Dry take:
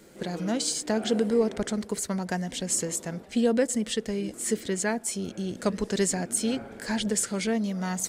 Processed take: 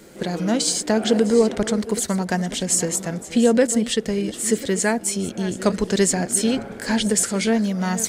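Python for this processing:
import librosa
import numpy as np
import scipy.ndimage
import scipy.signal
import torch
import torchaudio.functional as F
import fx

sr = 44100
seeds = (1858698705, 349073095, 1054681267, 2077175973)

y = fx.reverse_delay(x, sr, ms=517, wet_db=-14.0)
y = F.gain(torch.from_numpy(y), 7.0).numpy()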